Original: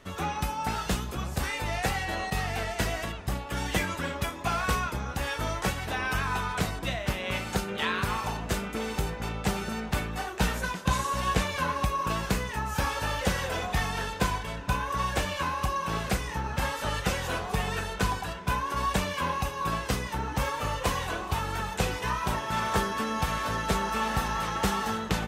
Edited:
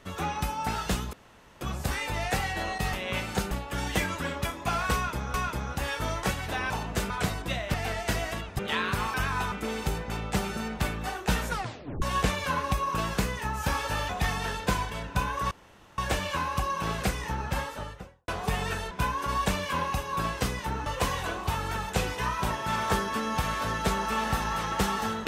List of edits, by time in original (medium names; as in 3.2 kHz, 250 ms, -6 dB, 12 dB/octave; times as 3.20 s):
1.13 s: insert room tone 0.48 s
2.45–3.30 s: swap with 7.11–7.69 s
4.73–5.13 s: loop, 2 plays
6.09–6.47 s: swap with 8.24–8.64 s
10.61 s: tape stop 0.53 s
13.21–13.62 s: delete
15.04 s: insert room tone 0.47 s
16.44–17.34 s: studio fade out
17.97–18.39 s: delete
20.34–20.70 s: delete